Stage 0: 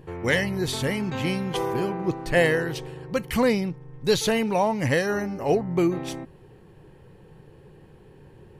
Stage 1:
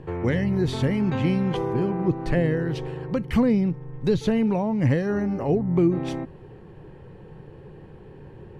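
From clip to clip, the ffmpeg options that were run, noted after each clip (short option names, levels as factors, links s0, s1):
-filter_complex "[0:a]aemphasis=mode=reproduction:type=75fm,acrossover=split=330[s0][s1];[s1]acompressor=threshold=0.0178:ratio=5[s2];[s0][s2]amix=inputs=2:normalize=0,volume=1.78"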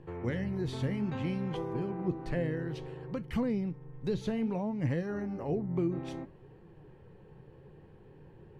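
-af "flanger=delay=5.8:depth=9.9:regen=76:speed=0.6:shape=sinusoidal,volume=0.501"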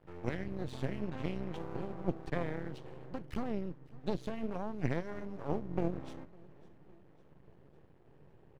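-af "aeval=exprs='max(val(0),0)':c=same,aecho=1:1:553|1106|1659|2212:0.0891|0.0508|0.029|0.0165,aeval=exprs='0.106*(cos(1*acos(clip(val(0)/0.106,-1,1)))-cos(1*PI/2))+0.0188*(cos(3*acos(clip(val(0)/0.106,-1,1)))-cos(3*PI/2))':c=same,volume=1.41"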